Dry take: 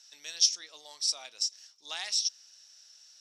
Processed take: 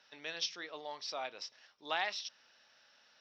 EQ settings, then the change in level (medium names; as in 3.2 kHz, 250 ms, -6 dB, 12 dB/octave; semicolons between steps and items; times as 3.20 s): distance through air 250 m; tape spacing loss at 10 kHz 29 dB; +13.0 dB